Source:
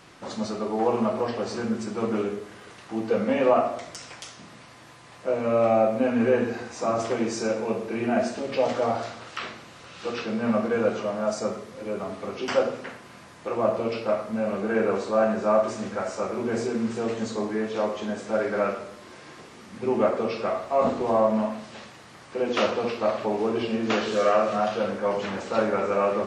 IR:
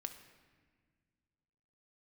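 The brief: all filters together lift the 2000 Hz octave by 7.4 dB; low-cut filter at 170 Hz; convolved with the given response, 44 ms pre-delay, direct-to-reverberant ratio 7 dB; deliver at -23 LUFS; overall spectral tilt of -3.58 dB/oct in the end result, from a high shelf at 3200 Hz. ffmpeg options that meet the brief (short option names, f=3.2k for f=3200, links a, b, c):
-filter_complex "[0:a]highpass=170,equalizer=f=2k:t=o:g=7.5,highshelf=f=3.2k:g=7,asplit=2[a][b];[1:a]atrim=start_sample=2205,adelay=44[c];[b][c]afir=irnorm=-1:irlink=0,volume=-4dB[d];[a][d]amix=inputs=2:normalize=0,volume=1dB"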